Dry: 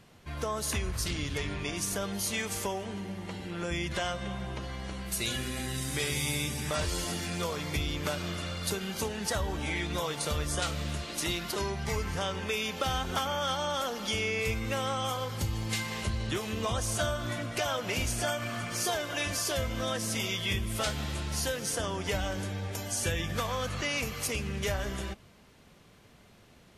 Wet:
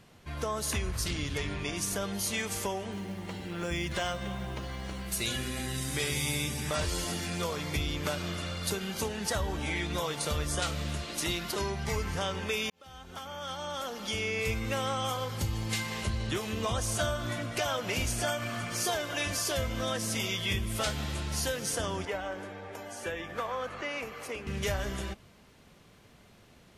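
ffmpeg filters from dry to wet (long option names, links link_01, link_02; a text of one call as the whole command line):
ffmpeg -i in.wav -filter_complex "[0:a]asettb=1/sr,asplit=3[link_01][link_02][link_03];[link_01]atrim=end=2.924[link_04];[link_02]atrim=start=2.92:end=5.24,asetpts=PTS-STARTPTS,afade=type=in:duration=0.004:curve=qsin,afade=type=out:start_time=2.316:duration=0.004:curve=qsin,acrusher=bits=7:mode=log:mix=0:aa=0.000001[link_05];[link_03]atrim=start=5.236[link_06];[link_04][link_05]acrossfade=duration=0.004:curve1=hsin:curve2=qsin[link_07];[link_07][link_06]acrossfade=duration=0.004:curve1=qsin:curve2=hsin,asettb=1/sr,asplit=3[link_08][link_09][link_10];[link_08]atrim=end=22.054[link_11];[link_09]atrim=start=22.05:end=24.47,asetpts=PTS-STARTPTS,afade=type=in:duration=0.004:curve=qsin,afade=type=out:start_time=2.416:duration=0.004:curve=qsin,acrossover=split=280 2300:gain=0.158 1 0.2[link_12][link_13][link_14];[link_12][link_13][link_14]amix=inputs=3:normalize=0[link_15];[link_10]atrim=start=24.466[link_16];[link_11][link_15]acrossfade=duration=0.004:curve1=hsin:curve2=qsin[link_17];[link_17][link_16]acrossfade=duration=0.004:curve1=qsin:curve2=hsin,asplit=2[link_18][link_19];[link_18]atrim=end=12.7,asetpts=PTS-STARTPTS,afade=type=out:start_time=12.696:duration=0.004:curve=hsin[link_20];[link_19]atrim=start=12.7,asetpts=PTS-STARTPTS,afade=type=in:duration=1.85[link_21];[link_20][link_21]concat=n=2:v=0:a=1" out.wav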